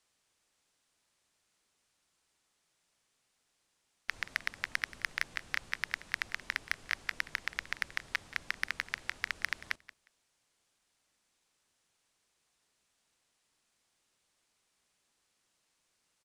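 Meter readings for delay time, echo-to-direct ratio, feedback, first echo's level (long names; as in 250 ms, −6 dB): 179 ms, −18.0 dB, 17%, −18.0 dB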